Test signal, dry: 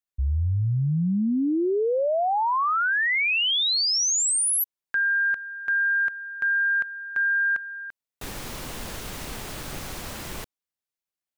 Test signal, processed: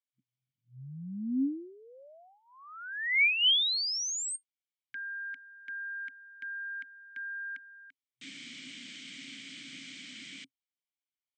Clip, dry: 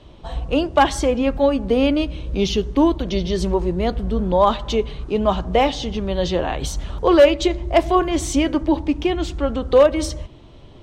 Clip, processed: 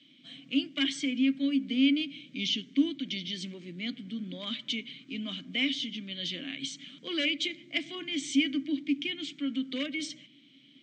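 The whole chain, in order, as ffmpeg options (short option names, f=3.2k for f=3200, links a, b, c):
-filter_complex "[0:a]acrossover=split=220[a][b];[b]crystalizer=i=5.5:c=0[c];[a][c]amix=inputs=2:normalize=0,afftfilt=real='re*between(b*sr/4096,120,8600)':imag='im*between(b*sr/4096,120,8600)':win_size=4096:overlap=0.75,asplit=3[d][e][f];[d]bandpass=f=270:t=q:w=8,volume=0dB[g];[e]bandpass=f=2.29k:t=q:w=8,volume=-6dB[h];[f]bandpass=f=3.01k:t=q:w=8,volume=-9dB[i];[g][h][i]amix=inputs=3:normalize=0,equalizer=f=410:t=o:w=0.72:g=-12.5"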